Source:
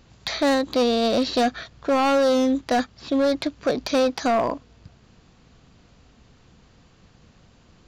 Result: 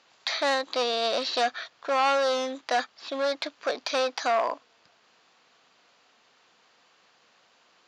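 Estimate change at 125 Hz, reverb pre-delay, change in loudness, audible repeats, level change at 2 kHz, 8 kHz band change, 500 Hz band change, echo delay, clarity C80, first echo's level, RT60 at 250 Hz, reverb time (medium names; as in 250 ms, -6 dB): under -20 dB, no reverb, -5.0 dB, no echo, 0.0 dB, -3.0 dB, -6.0 dB, no echo, no reverb, no echo, no reverb, no reverb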